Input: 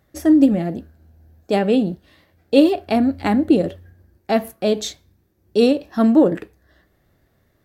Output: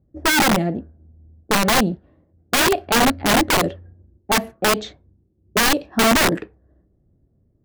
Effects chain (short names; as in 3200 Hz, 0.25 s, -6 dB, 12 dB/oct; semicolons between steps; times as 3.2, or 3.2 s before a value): low-pass opened by the level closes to 310 Hz, open at -12.5 dBFS; wrapped overs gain 13 dB; gain +2 dB